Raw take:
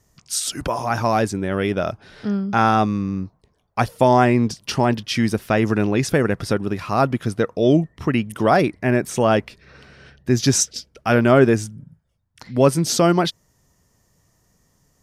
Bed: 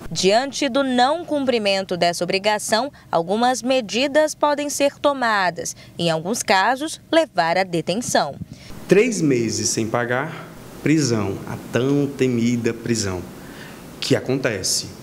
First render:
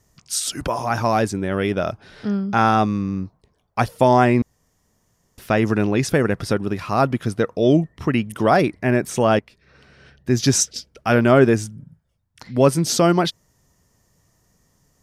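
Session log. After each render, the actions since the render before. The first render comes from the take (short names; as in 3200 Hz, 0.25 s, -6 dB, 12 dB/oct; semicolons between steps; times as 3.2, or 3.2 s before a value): 4.42–5.38 room tone; 9.39–10.45 fade in, from -12.5 dB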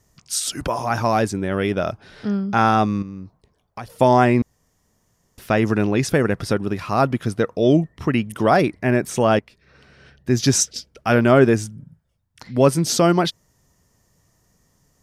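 3.02–3.9 compressor 4:1, threshold -31 dBFS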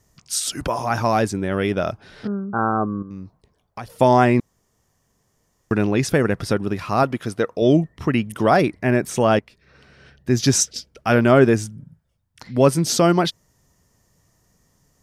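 2.27–3.11 rippled Chebyshev low-pass 1600 Hz, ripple 6 dB; 4.4–5.71 room tone; 7.03–7.62 tone controls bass -6 dB, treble 0 dB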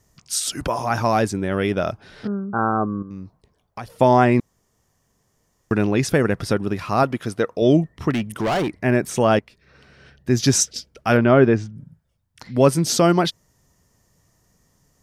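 3.89–4.32 high shelf 5000 Hz -6 dB; 8.1–8.77 overloaded stage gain 18.5 dB; 11.17–11.76 air absorption 190 m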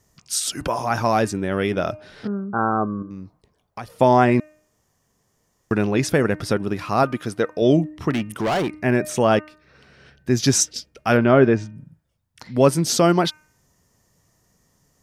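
low shelf 85 Hz -5 dB; de-hum 306.1 Hz, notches 9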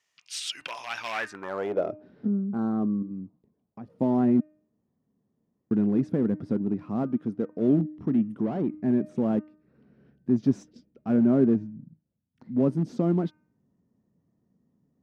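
in parallel at -10 dB: wrapped overs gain 15 dB; on the sum: band-pass sweep 2700 Hz -> 230 Hz, 1.05–2.12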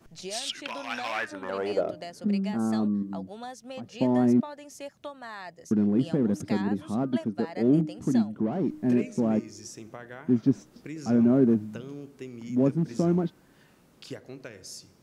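add bed -22 dB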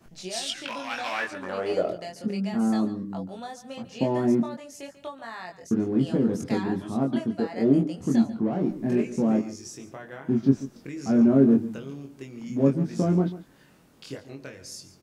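doubler 22 ms -3 dB; echo 0.142 s -15.5 dB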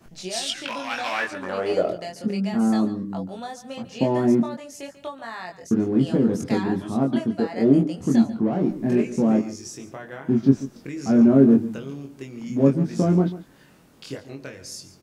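gain +3.5 dB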